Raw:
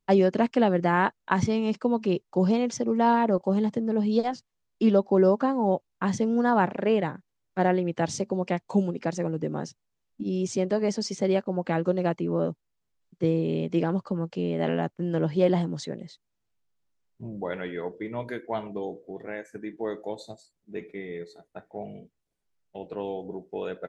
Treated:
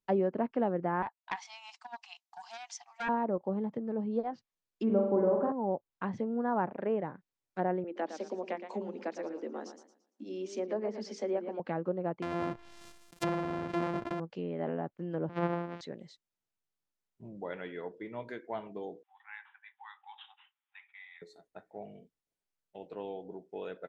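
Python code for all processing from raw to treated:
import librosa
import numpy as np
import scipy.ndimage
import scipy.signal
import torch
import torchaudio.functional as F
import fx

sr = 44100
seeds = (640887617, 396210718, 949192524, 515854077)

y = fx.chain(x, sr, fx.brickwall_highpass(low_hz=680.0),
    fx.peak_eq(hz=1400.0, db=-7.0, octaves=0.86),
    fx.doppler_dist(depth_ms=0.53), at=(1.02, 3.09))
y = fx.chain(y, sr, fx.lowpass(hz=1900.0, slope=6),
    fx.room_flutter(wall_m=7.6, rt60_s=0.82), at=(4.85, 5.52))
y = fx.chain(y, sr, fx.steep_highpass(hz=210.0, slope=72),
    fx.hum_notches(base_hz=50, count=9),
    fx.echo_warbled(ms=114, feedback_pct=32, rate_hz=2.8, cents=120, wet_db=-10), at=(7.84, 11.6))
y = fx.chain(y, sr, fx.sample_sort(block=128),
    fx.high_shelf(hz=3500.0, db=10.5),
    fx.sustainer(db_per_s=35.0), at=(12.22, 14.2))
y = fx.chain(y, sr, fx.sample_sort(block=256),
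    fx.bandpass_edges(low_hz=150.0, high_hz=4400.0), at=(15.29, 15.81))
y = fx.chain(y, sr, fx.high_shelf(hz=3400.0, db=5.0),
    fx.resample_bad(factor=6, down='none', up='filtered'),
    fx.brickwall_highpass(low_hz=760.0), at=(19.03, 21.22))
y = fx.env_lowpass_down(y, sr, base_hz=1300.0, full_db=-21.5)
y = fx.low_shelf(y, sr, hz=140.0, db=-9.0)
y = y * librosa.db_to_amplitude(-7.0)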